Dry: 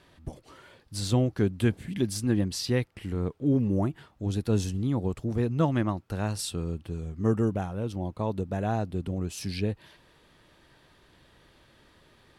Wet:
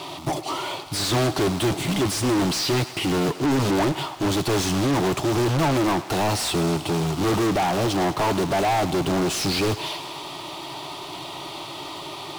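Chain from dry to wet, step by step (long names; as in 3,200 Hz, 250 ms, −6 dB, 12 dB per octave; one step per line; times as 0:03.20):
floating-point word with a short mantissa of 2 bits
phaser with its sweep stopped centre 330 Hz, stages 8
mid-hump overdrive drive 40 dB, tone 3,200 Hz, clips at −14 dBFS
on a send: feedback echo with a high-pass in the loop 104 ms, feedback 79%, high-pass 420 Hz, level −15 dB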